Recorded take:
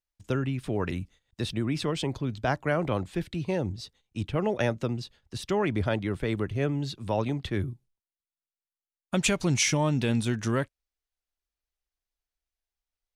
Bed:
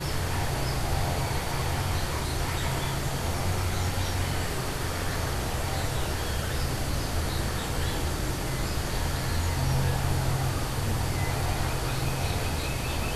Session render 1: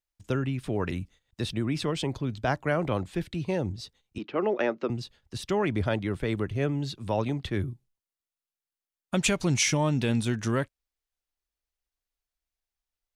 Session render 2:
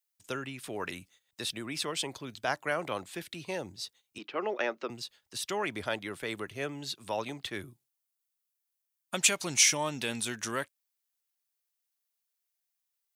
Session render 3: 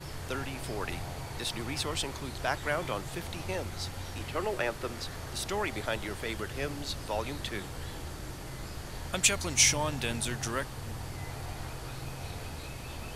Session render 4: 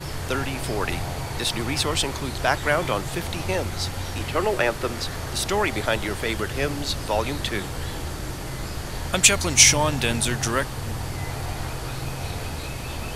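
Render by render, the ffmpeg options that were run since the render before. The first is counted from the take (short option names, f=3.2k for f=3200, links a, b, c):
-filter_complex "[0:a]asettb=1/sr,asplit=3[a][b][c];[a]atrim=end=4.184[d];[b]atrim=start=4.18:end=4.9,asetpts=PTS-STARTPTS,afade=t=in:d=0.004:c=qsin,afade=t=out:st=0.716:d=0.004:c=qsin,highpass=f=230:w=0.5412,highpass=f=230:w=1.3066,equalizer=f=370:t=q:w=4:g=5,equalizer=f=1.2k:t=q:w=4:g=4,equalizer=f=3.5k:t=q:w=4:g=-6,lowpass=f=4.5k:w=0.5412,lowpass=f=4.5k:w=1.3066[e];[c]atrim=start=4.896[f];[d][e]acrossfade=d=0.004:c1=hsin:c2=qsin[g];[g][f]acrossfade=d=0.004:c1=qsin:c2=hsin"
-af "highpass=f=900:p=1,highshelf=f=7.9k:g=12"
-filter_complex "[1:a]volume=-11.5dB[a];[0:a][a]amix=inputs=2:normalize=0"
-af "volume=9.5dB,alimiter=limit=-1dB:level=0:latency=1"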